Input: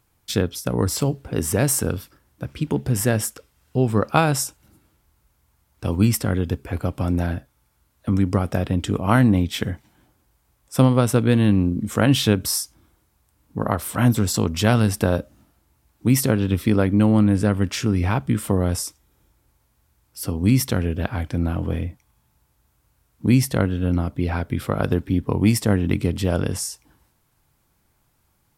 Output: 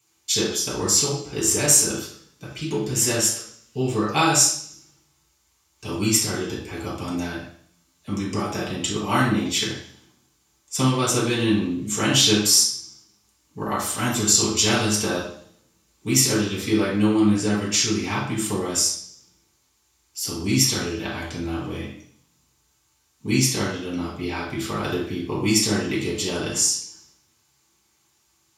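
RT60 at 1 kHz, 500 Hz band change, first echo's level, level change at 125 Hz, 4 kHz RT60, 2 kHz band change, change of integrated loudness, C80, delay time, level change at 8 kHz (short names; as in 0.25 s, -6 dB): 0.55 s, -2.5 dB, none, -8.0 dB, 0.70 s, +1.5 dB, 0.0 dB, 6.5 dB, none, +9.0 dB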